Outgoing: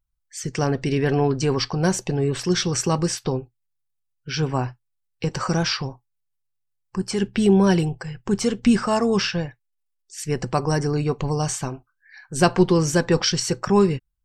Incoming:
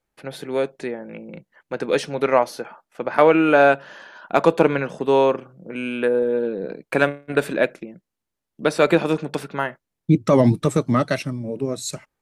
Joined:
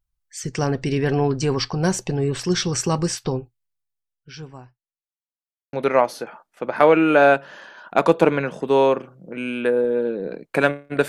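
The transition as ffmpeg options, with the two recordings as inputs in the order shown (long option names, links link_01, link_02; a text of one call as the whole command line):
ffmpeg -i cue0.wav -i cue1.wav -filter_complex "[0:a]apad=whole_dur=11.08,atrim=end=11.08,asplit=2[link_01][link_02];[link_01]atrim=end=5.22,asetpts=PTS-STARTPTS,afade=type=out:start_time=3.46:duration=1.76:curve=qua[link_03];[link_02]atrim=start=5.22:end=5.73,asetpts=PTS-STARTPTS,volume=0[link_04];[1:a]atrim=start=2.11:end=7.46,asetpts=PTS-STARTPTS,afade=type=in:duration=0.004:curve=hsin[link_05];[link_03][link_04][link_05]concat=n=3:v=0:a=1" out.wav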